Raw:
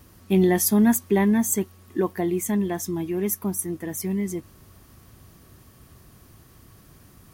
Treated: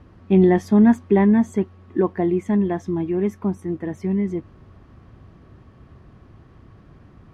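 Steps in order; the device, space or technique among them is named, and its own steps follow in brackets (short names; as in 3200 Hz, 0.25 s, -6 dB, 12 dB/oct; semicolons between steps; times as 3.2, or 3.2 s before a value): phone in a pocket (LPF 3300 Hz 12 dB/oct; high shelf 2300 Hz -11 dB); gain +4.5 dB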